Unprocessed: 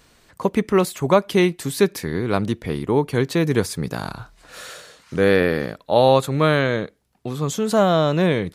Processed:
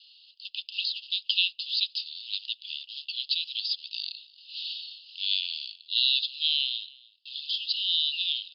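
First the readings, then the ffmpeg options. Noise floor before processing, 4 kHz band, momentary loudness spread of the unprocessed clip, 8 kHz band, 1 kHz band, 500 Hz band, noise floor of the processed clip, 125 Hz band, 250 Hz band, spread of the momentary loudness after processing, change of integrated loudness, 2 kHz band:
-58 dBFS, +8.0 dB, 16 LU, under -35 dB, under -40 dB, under -40 dB, -60 dBFS, under -40 dB, under -40 dB, 13 LU, -8.0 dB, -11.5 dB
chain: -af "acrusher=bits=6:mode=log:mix=0:aa=0.000001,asuperpass=centerf=3700:order=20:qfactor=1.6,aecho=1:1:299:0.0668,volume=2.51"

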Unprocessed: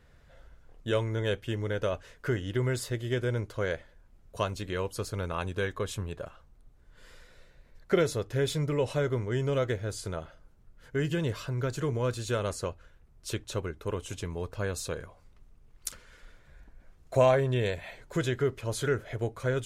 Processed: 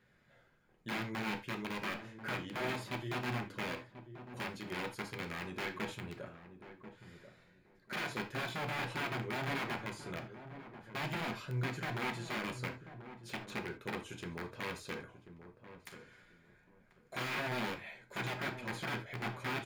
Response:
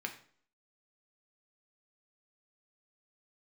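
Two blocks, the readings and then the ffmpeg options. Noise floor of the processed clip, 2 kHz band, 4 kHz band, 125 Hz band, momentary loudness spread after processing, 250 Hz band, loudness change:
-67 dBFS, -1.0 dB, -3.5 dB, -12.0 dB, 16 LU, -7.0 dB, -8.5 dB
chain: -filter_complex "[0:a]aeval=exprs='0.266*(cos(1*acos(clip(val(0)/0.266,-1,1)))-cos(1*PI/2))+0.00596*(cos(8*acos(clip(val(0)/0.266,-1,1)))-cos(8*PI/2))':c=same,aeval=exprs='(mod(17.8*val(0)+1,2)-1)/17.8':c=same,acrossover=split=4000[s0][s1];[s1]acompressor=threshold=0.00794:ratio=4:attack=1:release=60[s2];[s0][s2]amix=inputs=2:normalize=0,asplit=2[s3][s4];[s4]adelay=1038,lowpass=f=830:p=1,volume=0.316,asplit=2[s5][s6];[s6]adelay=1038,lowpass=f=830:p=1,volume=0.23,asplit=2[s7][s8];[s8]adelay=1038,lowpass=f=830:p=1,volume=0.23[s9];[s3][s5][s7][s9]amix=inputs=4:normalize=0[s10];[1:a]atrim=start_sample=2205,afade=t=out:st=0.14:d=0.01,atrim=end_sample=6615[s11];[s10][s11]afir=irnorm=-1:irlink=0,volume=0.501"

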